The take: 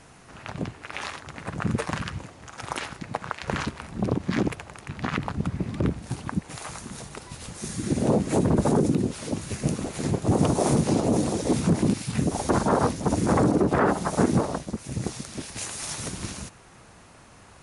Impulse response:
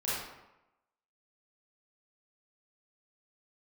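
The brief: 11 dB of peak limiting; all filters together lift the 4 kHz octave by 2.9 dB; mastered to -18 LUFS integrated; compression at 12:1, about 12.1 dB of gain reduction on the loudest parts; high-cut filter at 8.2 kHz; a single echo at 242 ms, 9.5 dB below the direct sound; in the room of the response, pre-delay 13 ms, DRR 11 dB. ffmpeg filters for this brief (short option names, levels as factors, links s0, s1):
-filter_complex "[0:a]lowpass=8200,equalizer=f=4000:t=o:g=4,acompressor=threshold=0.0355:ratio=12,alimiter=level_in=1.12:limit=0.0631:level=0:latency=1,volume=0.891,aecho=1:1:242:0.335,asplit=2[s0][s1];[1:a]atrim=start_sample=2205,adelay=13[s2];[s1][s2]afir=irnorm=-1:irlink=0,volume=0.133[s3];[s0][s3]amix=inputs=2:normalize=0,volume=7.94"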